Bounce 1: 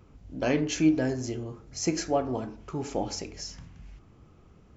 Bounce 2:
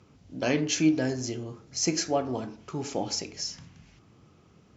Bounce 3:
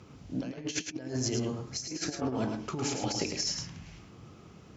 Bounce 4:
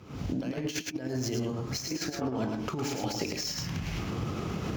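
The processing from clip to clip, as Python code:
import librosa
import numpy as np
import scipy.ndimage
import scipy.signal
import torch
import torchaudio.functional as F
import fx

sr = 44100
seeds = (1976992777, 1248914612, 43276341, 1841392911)

y1 = scipy.signal.sosfilt(scipy.signal.cheby1(2, 1.0, [120.0, 5700.0], 'bandpass', fs=sr, output='sos'), x)
y1 = fx.high_shelf(y1, sr, hz=3400.0, db=9.0)
y2 = fx.over_compress(y1, sr, threshold_db=-34.0, ratio=-0.5)
y2 = y2 + 10.0 ** (-6.0 / 20.0) * np.pad(y2, (int(107 * sr / 1000.0), 0))[:len(y2)]
y3 = scipy.ndimage.median_filter(y2, 5, mode='constant')
y3 = fx.recorder_agc(y3, sr, target_db=-25.5, rise_db_per_s=76.0, max_gain_db=30)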